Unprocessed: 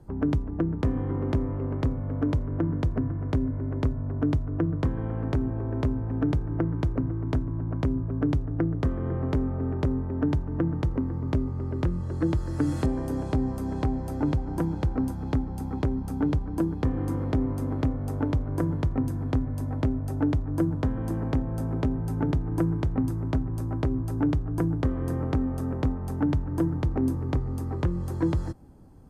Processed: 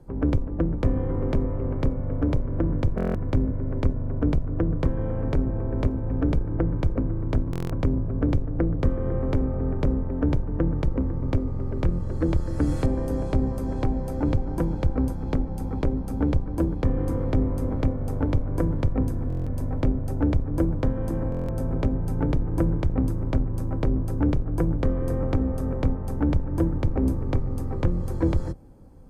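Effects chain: octave divider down 2 oct, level +1 dB; small resonant body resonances 520/2300 Hz, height 8 dB; buffer glitch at 2.96/7.51/19.28/21.30 s, samples 1024, times 7

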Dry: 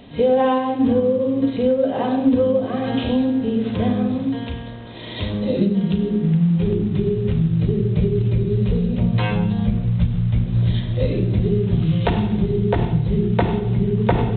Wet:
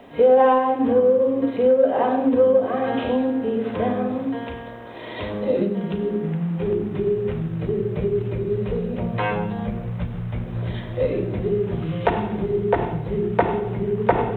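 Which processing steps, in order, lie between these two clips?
three-band isolator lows -14 dB, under 340 Hz, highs -22 dB, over 2.4 kHz; in parallel at -11.5 dB: saturation -14.5 dBFS, distortion -17 dB; on the sum: bit crusher 12-bit; trim +2 dB

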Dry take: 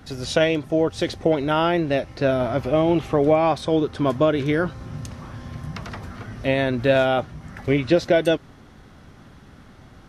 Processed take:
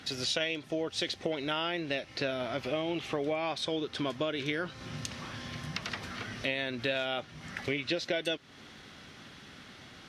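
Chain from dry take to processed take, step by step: frequency weighting D; compression 3:1, threshold -29 dBFS, peak gain reduction 14 dB; trim -3.5 dB

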